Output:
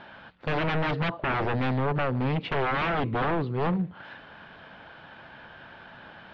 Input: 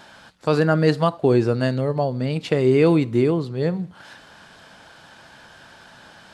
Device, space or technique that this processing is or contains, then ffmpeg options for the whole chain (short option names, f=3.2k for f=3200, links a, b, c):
synthesiser wavefolder: -af "aeval=exprs='0.0891*(abs(mod(val(0)/0.0891+3,4)-2)-1)':c=same,lowpass=f=3.1k:w=0.5412,lowpass=f=3.1k:w=1.3066"